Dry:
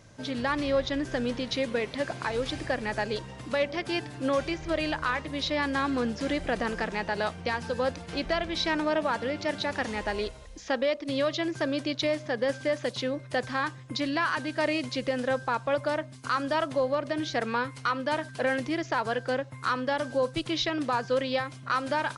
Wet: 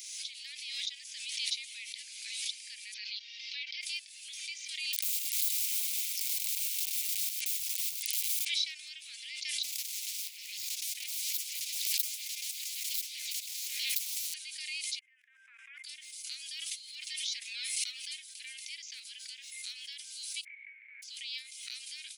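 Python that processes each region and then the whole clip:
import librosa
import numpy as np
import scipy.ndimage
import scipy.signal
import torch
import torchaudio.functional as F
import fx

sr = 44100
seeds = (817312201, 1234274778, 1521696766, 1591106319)

y = fx.chain(x, sr, fx.steep_lowpass(hz=5300.0, slope=48),
    fx.comb(ms=5.2, depth=0.5), at=(2.94, 3.81))
y = fx.chain(y, sr, fx.overflow_wrap(gain_db=30.0),
    fx.echo_single(ms=104, db=-8.0), at=(4.93, 8.45))
y = fx.chain(y, sr, fx.median_filter(points=15),
    fx.echo_stepped(ms=150, hz=1300.0, octaves=0.7, feedback_pct=70, wet_db=-8.5),
    fx.spectral_comp(ratio=4.0), at=(9.63, 14.34))
y = fx.chain(y, sr, fx.ellip_bandpass(low_hz=140.0, high_hz=1700.0, order=3, stop_db=40),
    fx.level_steps(step_db=16), at=(14.99, 15.84))
y = fx.chain(y, sr, fx.highpass(hz=800.0, slope=12),
    fx.comb(ms=5.5, depth=0.69),
    fx.pre_swell(db_per_s=120.0), at=(16.66, 18.29))
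y = fx.spec_flatten(y, sr, power=0.43, at=(20.43, 21.02), fade=0.02)
y = fx.cheby_ripple(y, sr, hz=2300.0, ripple_db=6, at=(20.43, 21.02), fade=0.02)
y = scipy.signal.sosfilt(scipy.signal.cheby1(5, 1.0, 2200.0, 'highpass', fs=sr, output='sos'), y)
y = np.diff(y, prepend=0.0)
y = fx.pre_swell(y, sr, db_per_s=34.0)
y = F.gain(torch.from_numpy(y), 3.5).numpy()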